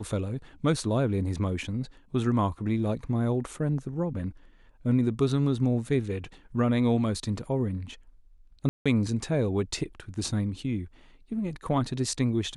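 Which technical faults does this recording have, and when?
8.69–8.86 s: dropout 166 ms

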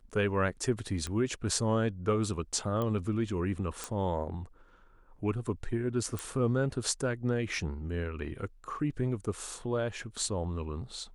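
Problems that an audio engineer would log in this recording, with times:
1.07 s: pop -22 dBFS
2.82 s: pop -21 dBFS
3.84 s: pop
6.19 s: pop

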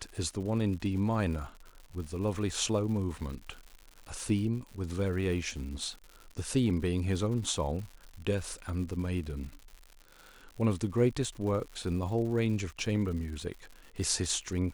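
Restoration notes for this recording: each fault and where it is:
crackle 150 per s -40 dBFS

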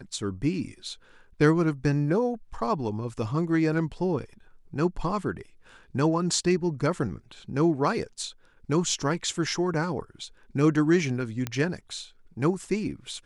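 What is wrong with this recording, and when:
11.47 s: pop -14 dBFS

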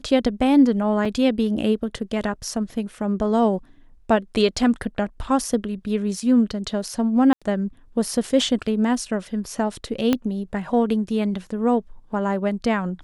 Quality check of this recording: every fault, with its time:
1.05 s: dropout 3.7 ms
7.33–7.42 s: dropout 86 ms
10.13 s: pop -7 dBFS

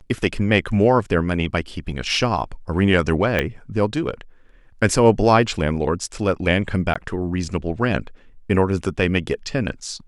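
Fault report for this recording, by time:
3.39 s: pop -7 dBFS
6.94–6.96 s: dropout 15 ms

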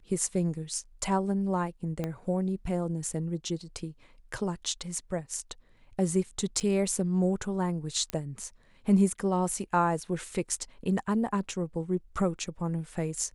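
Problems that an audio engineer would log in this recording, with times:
2.04 s: pop -19 dBFS
6.60–6.61 s: dropout 7.2 ms
8.10 s: pop -17 dBFS

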